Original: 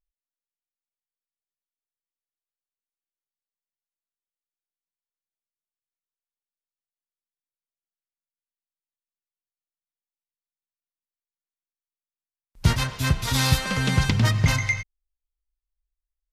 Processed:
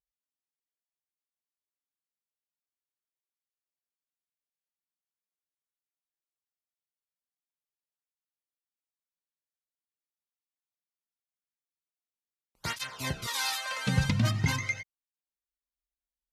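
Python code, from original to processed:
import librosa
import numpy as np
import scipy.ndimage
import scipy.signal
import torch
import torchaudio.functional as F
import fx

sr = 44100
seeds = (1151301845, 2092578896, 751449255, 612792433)

y = fx.highpass(x, sr, hz=590.0, slope=24, at=(13.27, 13.87))
y = fx.flanger_cancel(y, sr, hz=0.43, depth_ms=3.0)
y = y * 10.0 ** (-3.5 / 20.0)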